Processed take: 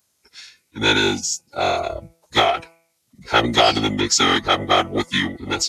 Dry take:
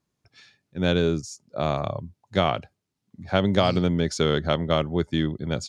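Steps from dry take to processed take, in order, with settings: RIAA curve recording; de-hum 278.6 Hz, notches 9; formant-preserving pitch shift -9 st; trim +8 dB

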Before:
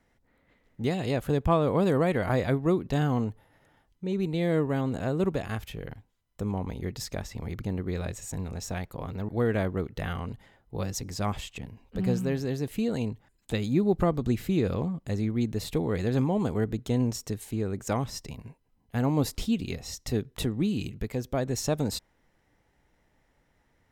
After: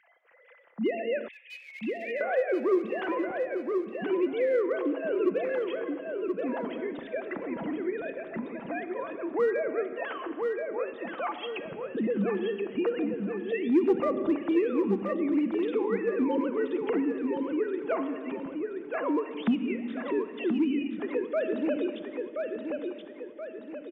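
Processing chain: formants replaced by sine waves; simulated room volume 2300 m³, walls mixed, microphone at 0.76 m; in parallel at -8.5 dB: hard clipper -21 dBFS, distortion -11 dB; 1.28–2.21 s: on the sum: steep high-pass 1.9 kHz 96 dB/octave; on a send: feedback delay 1027 ms, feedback 32%, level -6.5 dB; on the sum: three bands compressed up and down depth 40%; trim -3.5 dB

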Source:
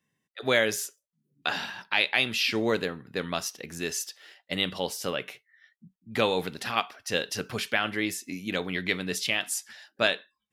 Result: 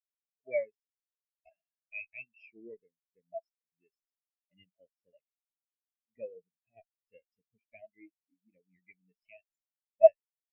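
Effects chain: comb filter that takes the minimum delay 0.38 ms; in parallel at 0 dB: compression, threshold -41 dBFS, peak gain reduction 21 dB; on the sum: rippled Chebyshev low-pass 7.3 kHz, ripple 6 dB; small resonant body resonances 650/3800 Hz, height 12 dB, ringing for 45 ms; spectral contrast expander 4:1

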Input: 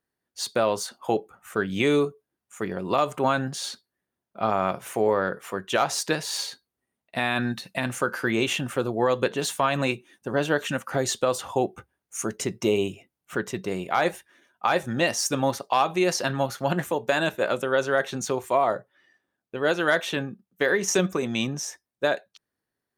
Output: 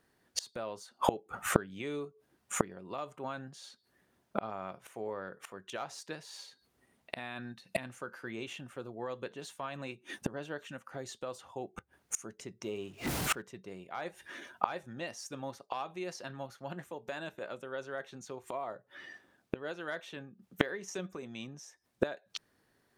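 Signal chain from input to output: 12.64–13.42 s: jump at every zero crossing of -38.5 dBFS; inverted gate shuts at -29 dBFS, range -30 dB; treble shelf 10 kHz -8.5 dB; trim +13 dB

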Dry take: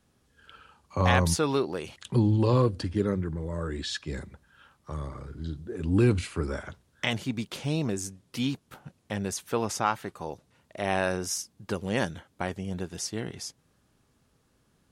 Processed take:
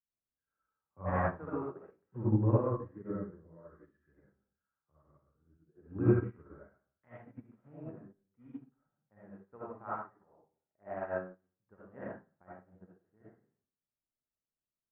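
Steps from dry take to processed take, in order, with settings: steep low-pass 1.7 kHz 36 dB/octave; reverberation RT60 0.60 s, pre-delay 30 ms, DRR -7 dB; upward expansion 2.5:1, over -34 dBFS; trim -8 dB

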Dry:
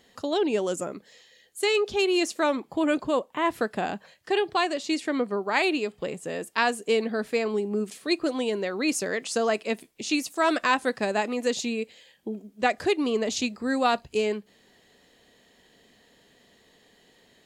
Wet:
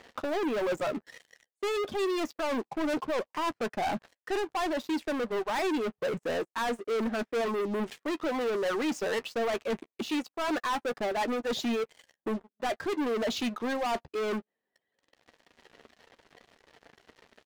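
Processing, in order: high-pass 170 Hz 6 dB/octave; reverb removal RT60 1.4 s; low-pass 1.6 kHz 12 dB/octave; bass shelf 310 Hz -9 dB; reverse; compression 12:1, threshold -36 dBFS, peak gain reduction 16.5 dB; reverse; waveshaping leveller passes 5; doubling 13 ms -14 dB

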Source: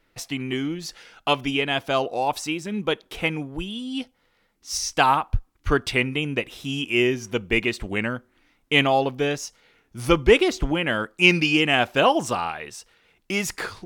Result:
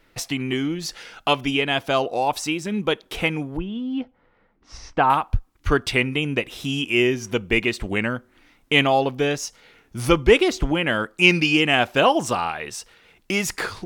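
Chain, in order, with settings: 3.57–5.10 s: low-pass 1.5 kHz 12 dB/octave; in parallel at +1.5 dB: compression, threshold -35 dBFS, peak gain reduction 23 dB

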